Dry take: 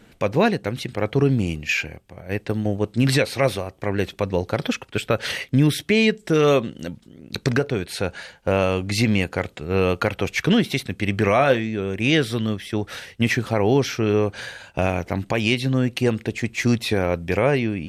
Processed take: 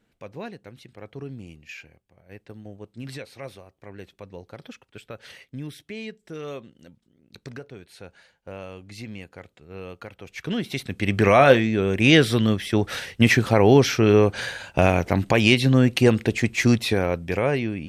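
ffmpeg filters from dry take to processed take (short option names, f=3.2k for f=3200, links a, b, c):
-af "volume=3.5dB,afade=t=in:st=10.25:d=0.44:silence=0.281838,afade=t=in:st=10.69:d=0.8:silence=0.298538,afade=t=out:st=16.31:d=0.94:silence=0.446684"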